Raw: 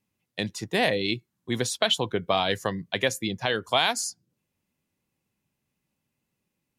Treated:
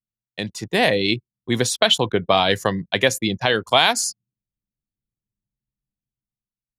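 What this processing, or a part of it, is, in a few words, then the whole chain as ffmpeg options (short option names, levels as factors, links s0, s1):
voice memo with heavy noise removal: -af "anlmdn=0.0158,dynaudnorm=f=110:g=13:m=2.66,volume=1.12"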